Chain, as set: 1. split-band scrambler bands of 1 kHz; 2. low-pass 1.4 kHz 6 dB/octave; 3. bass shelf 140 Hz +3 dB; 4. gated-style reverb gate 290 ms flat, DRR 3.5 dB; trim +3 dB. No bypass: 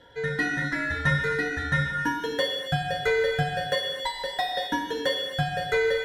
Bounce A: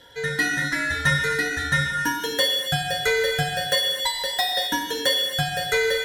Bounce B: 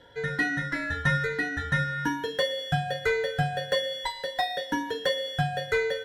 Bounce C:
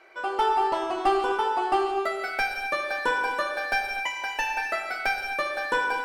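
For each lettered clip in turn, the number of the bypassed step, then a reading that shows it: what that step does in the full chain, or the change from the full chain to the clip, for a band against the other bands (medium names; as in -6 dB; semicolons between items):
2, 8 kHz band +13.0 dB; 4, loudness change -1.5 LU; 1, 1 kHz band +8.0 dB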